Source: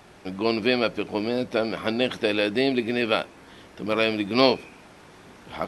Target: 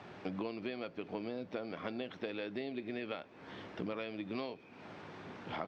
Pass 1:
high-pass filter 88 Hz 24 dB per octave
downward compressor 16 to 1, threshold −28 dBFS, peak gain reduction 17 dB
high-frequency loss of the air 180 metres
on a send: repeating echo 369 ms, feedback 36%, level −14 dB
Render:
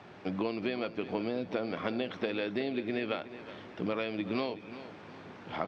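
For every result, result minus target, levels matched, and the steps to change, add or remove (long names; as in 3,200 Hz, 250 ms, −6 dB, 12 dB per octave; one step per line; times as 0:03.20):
echo-to-direct +11 dB; downward compressor: peak gain reduction −7 dB
change: repeating echo 369 ms, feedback 36%, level −25 dB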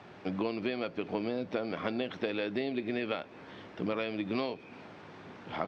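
downward compressor: peak gain reduction −7 dB
change: downward compressor 16 to 1, threshold −35.5 dBFS, peak gain reduction 24 dB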